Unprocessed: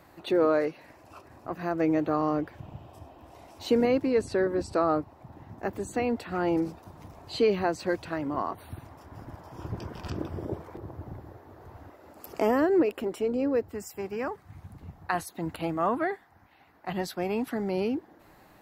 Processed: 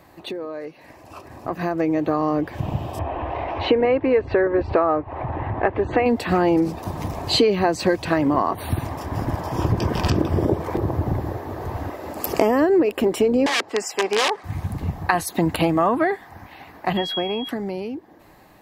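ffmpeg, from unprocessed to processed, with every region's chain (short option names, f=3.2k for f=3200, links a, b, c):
-filter_complex "[0:a]asettb=1/sr,asplit=3[a][b][c];[a]atrim=end=2.994[d];[b]atrim=start=2.99:end=6.06,asetpts=PTS-STARTPTS,afade=t=in:d=0.004:c=qsin,afade=t=out:st=3.066:d=0.004:c=qsin,lowpass=f=2.6k:w=0.5412,lowpass=f=2.6k:w=1.3066,equalizer=f=200:w=1.4:g=-13,acompressor=mode=upward:threshold=-37dB:ratio=2.5:attack=3.2:release=140:knee=2.83:detection=peak[e];[c]atrim=start=6.056[f];[d][e]acrossfade=d=0.004:c1=hsin:c2=qsin[g];[g][f]acrossfade=d=0.004:c1=qsin:c2=hsin,asettb=1/sr,asplit=3[h][i][j];[h]atrim=end=13.464[k];[i]atrim=start=13.46:end=14.44,asetpts=PTS-STARTPTS,afade=t=in:d=0.004:c=qsin,afade=t=out:st=0.976:d=0.004:c=qsin,aeval=exprs='(mod(20*val(0)+1,2)-1)/20':c=same,highpass=460,lowpass=5.8k[l];[j]atrim=start=14.436[m];[k][l]acrossfade=d=0.004:c1=hsin:c2=qsin[n];[n][m]acrossfade=d=0.004:c1=qsin:c2=hsin,asettb=1/sr,asplit=3[o][p][q];[o]atrim=end=16.974[r];[p]atrim=start=16.97:end=17.49,asetpts=PTS-STARTPTS,afade=t=in:d=0.004:c=qsin,afade=t=out:st=0.516:d=0.004:c=qsin,bass=f=250:g=-6,treble=f=4k:g=-14,aeval=exprs='val(0)+0.0158*sin(2*PI*3300*n/s)':c=same[s];[q]atrim=start=17.486[t];[r][s]acrossfade=d=0.004:c1=hsin:c2=qsin[u];[u][t]acrossfade=d=0.004:c1=qsin:c2=hsin,acompressor=threshold=-35dB:ratio=5,bandreject=f=1.4k:w=8.8,dynaudnorm=f=270:g=13:m=14dB,volume=5dB"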